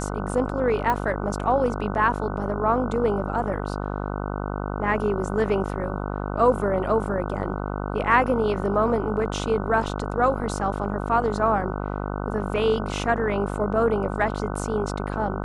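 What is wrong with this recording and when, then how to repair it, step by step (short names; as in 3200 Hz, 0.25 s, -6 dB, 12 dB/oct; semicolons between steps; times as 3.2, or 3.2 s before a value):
buzz 50 Hz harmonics 30 -29 dBFS
0.9 pop -12 dBFS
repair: de-click; de-hum 50 Hz, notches 30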